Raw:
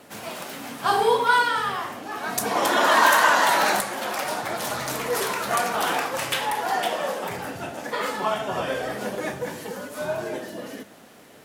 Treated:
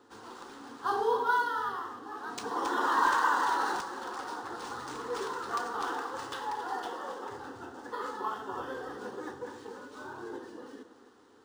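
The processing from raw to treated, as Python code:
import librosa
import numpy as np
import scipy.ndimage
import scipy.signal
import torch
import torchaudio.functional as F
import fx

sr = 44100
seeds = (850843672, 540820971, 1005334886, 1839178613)

y = scipy.signal.sosfilt(scipy.signal.butter(2, 73.0, 'highpass', fs=sr, output='sos'), x)
y = fx.high_shelf(y, sr, hz=4900.0, db=-7.5)
y = fx.fixed_phaser(y, sr, hz=630.0, stages=6)
y = y + 10.0 ** (-13.0 / 20.0) * np.pad(y, (int(272 * sr / 1000.0), 0))[:len(y)]
y = np.interp(np.arange(len(y)), np.arange(len(y))[::3], y[::3])
y = y * 10.0 ** (-6.5 / 20.0)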